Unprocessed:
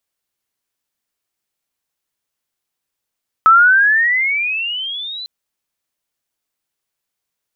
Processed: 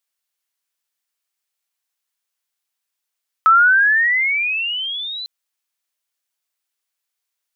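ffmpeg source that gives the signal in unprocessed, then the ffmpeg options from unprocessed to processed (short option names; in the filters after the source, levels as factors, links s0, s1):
-f lavfi -i "aevalsrc='pow(10,(-4.5-21*t/1.8)/20)*sin(2*PI*1290*1.8/(20*log(2)/12)*(exp(20*log(2)/12*t/1.8)-1))':d=1.8:s=44100"
-af "highpass=f=1200:p=1"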